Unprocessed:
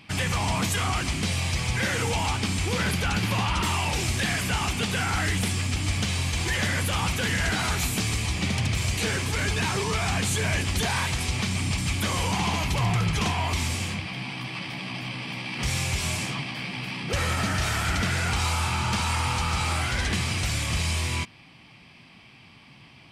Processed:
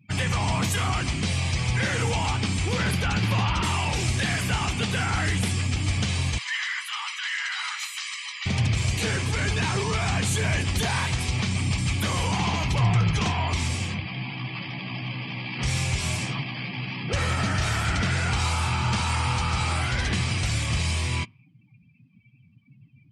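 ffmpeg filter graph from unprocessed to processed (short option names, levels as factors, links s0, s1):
-filter_complex "[0:a]asettb=1/sr,asplit=3[s0][s1][s2];[s0]atrim=end=6.384[s3];[s1]atrim=start=6.38:end=8.46,asetpts=PTS-STARTPTS,afade=t=in:d=0.004:c=qsin,afade=t=out:st=2.076:d=0.004:c=qsin,highpass=f=1200:w=0.5412,highpass=f=1200:w=1.3066,highshelf=f=7800:g=-10.5,aecho=1:1:1:0.34,atrim=end_sample=91728[s4];[s2]atrim=start=8.456[s5];[s3][s4]acrossfade=d=0.004:c1=hsin:c2=qsin[s6];[s6][s5]acrossfade=d=0.004:c1=qsin:c2=hsin,afftdn=nr=34:nf=-42,equalizer=f=120:w=2.6:g=5"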